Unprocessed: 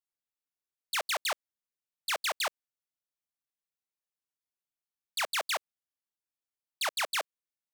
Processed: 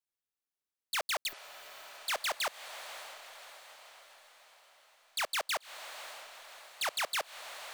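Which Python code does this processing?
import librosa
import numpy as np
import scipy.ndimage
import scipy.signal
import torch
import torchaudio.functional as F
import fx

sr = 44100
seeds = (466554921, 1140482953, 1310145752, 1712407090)

y = fx.block_float(x, sr, bits=3)
y = fx.echo_diffused(y, sr, ms=586, feedback_pct=53, wet_db=-11.0)
y = fx.spec_repair(y, sr, seeds[0], start_s=1.31, length_s=0.67, low_hz=410.0, high_hz=12000.0, source='after')
y = y * 10.0 ** (-2.0 / 20.0)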